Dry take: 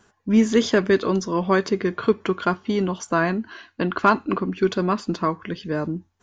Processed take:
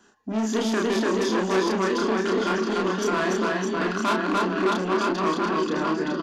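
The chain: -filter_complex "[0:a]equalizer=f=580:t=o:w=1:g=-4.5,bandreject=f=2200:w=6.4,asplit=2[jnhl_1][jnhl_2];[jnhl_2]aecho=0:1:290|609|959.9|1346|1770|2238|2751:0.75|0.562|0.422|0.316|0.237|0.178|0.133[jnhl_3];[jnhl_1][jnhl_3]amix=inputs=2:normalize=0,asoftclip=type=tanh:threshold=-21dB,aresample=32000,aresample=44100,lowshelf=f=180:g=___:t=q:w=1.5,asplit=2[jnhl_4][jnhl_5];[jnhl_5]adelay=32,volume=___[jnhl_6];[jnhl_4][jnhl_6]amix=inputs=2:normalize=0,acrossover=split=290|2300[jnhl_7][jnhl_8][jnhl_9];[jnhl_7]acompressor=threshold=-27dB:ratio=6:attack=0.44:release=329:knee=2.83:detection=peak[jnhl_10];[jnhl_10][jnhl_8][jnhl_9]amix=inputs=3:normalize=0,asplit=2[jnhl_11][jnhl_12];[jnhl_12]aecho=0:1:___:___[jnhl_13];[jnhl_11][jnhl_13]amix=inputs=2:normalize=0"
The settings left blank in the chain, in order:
-10.5, -2dB, 238, 0.075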